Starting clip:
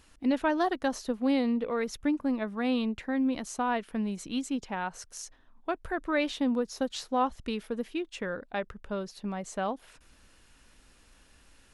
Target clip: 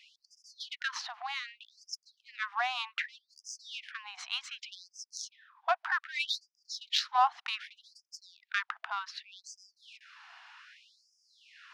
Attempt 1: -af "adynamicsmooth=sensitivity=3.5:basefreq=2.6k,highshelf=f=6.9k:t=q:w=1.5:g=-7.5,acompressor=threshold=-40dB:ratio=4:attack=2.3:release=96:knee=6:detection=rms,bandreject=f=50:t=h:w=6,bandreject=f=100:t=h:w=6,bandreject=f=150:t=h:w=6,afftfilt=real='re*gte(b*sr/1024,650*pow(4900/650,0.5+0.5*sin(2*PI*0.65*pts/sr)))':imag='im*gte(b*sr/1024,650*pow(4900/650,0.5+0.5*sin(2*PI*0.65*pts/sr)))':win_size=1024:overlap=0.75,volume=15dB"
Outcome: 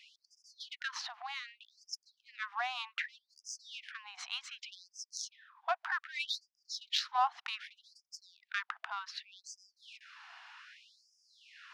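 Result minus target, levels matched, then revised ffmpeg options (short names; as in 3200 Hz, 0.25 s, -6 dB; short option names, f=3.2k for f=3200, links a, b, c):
compressor: peak gain reduction +4.5 dB
-af "adynamicsmooth=sensitivity=3.5:basefreq=2.6k,highshelf=f=6.9k:t=q:w=1.5:g=-7.5,acompressor=threshold=-34dB:ratio=4:attack=2.3:release=96:knee=6:detection=rms,bandreject=f=50:t=h:w=6,bandreject=f=100:t=h:w=6,bandreject=f=150:t=h:w=6,afftfilt=real='re*gte(b*sr/1024,650*pow(4900/650,0.5+0.5*sin(2*PI*0.65*pts/sr)))':imag='im*gte(b*sr/1024,650*pow(4900/650,0.5+0.5*sin(2*PI*0.65*pts/sr)))':win_size=1024:overlap=0.75,volume=15dB"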